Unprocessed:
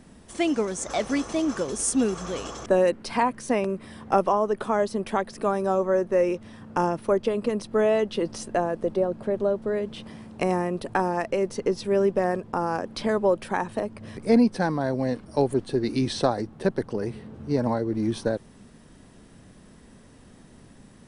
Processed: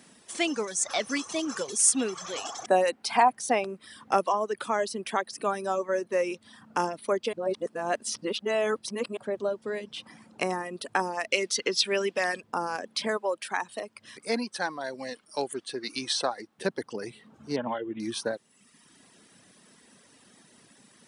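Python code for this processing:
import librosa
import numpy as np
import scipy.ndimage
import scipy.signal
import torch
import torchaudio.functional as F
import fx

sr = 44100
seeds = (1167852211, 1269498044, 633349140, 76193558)

y = fx.peak_eq(x, sr, hz=760.0, db=13.0, octaves=0.32, at=(2.37, 3.76))
y = fx.high_shelf(y, sr, hz=5900.0, db=-4.0, at=(9.84, 10.65))
y = fx.weighting(y, sr, curve='D', at=(11.3, 12.4), fade=0.02)
y = fx.low_shelf(y, sr, hz=350.0, db=-10.0, at=(13.17, 16.58))
y = fx.resample_bad(y, sr, factor=6, down='none', up='filtered', at=(17.56, 18.0))
y = fx.edit(y, sr, fx.reverse_span(start_s=7.33, length_s=1.84), tone=tone)
y = fx.dereverb_blind(y, sr, rt60_s=0.94)
y = scipy.signal.sosfilt(scipy.signal.butter(2, 180.0, 'highpass', fs=sr, output='sos'), y)
y = fx.tilt_shelf(y, sr, db=-6.0, hz=1300.0)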